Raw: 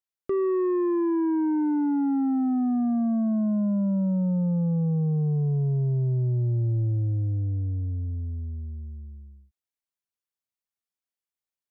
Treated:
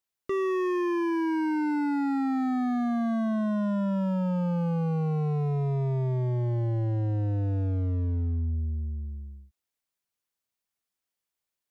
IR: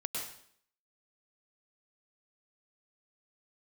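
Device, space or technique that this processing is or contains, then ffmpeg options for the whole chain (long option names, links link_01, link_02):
limiter into clipper: -af "alimiter=level_in=1dB:limit=-24dB:level=0:latency=1,volume=-1dB,asoftclip=type=hard:threshold=-31dB,volume=5dB"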